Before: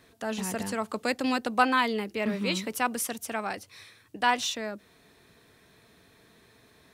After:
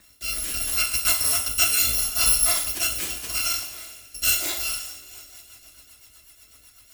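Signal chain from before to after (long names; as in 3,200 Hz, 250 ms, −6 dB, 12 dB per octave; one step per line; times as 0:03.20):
samples in bit-reversed order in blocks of 256 samples
coupled-rooms reverb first 0.51 s, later 4.1 s, from −20 dB, DRR −0.5 dB
rotating-speaker cabinet horn 0.75 Hz, later 8 Hz, at 0:04.69
level +6.5 dB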